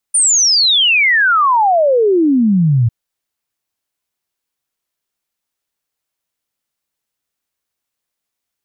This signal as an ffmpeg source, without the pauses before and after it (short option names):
-f lavfi -i "aevalsrc='0.376*clip(min(t,2.75-t)/0.01,0,1)*sin(2*PI*9400*2.75/log(110/9400)*(exp(log(110/9400)*t/2.75)-1))':d=2.75:s=44100"